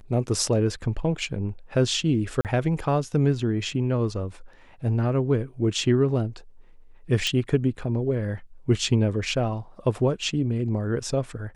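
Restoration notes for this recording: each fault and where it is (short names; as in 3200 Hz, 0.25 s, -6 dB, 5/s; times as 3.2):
2.41–2.45 gap 38 ms
7.27 pop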